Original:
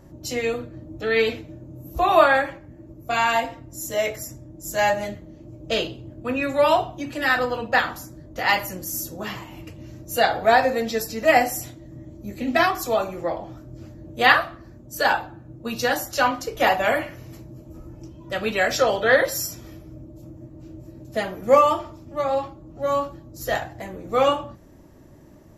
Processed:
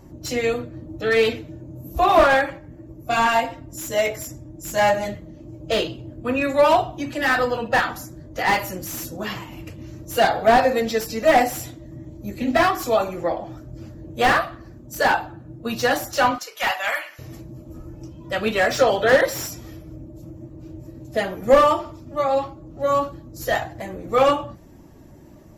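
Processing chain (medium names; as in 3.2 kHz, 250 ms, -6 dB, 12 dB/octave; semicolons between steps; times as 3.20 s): coarse spectral quantiser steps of 15 dB; 16.38–17.19 s: high-pass 1.2 kHz 12 dB/octave; slew-rate limiter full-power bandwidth 180 Hz; trim +3 dB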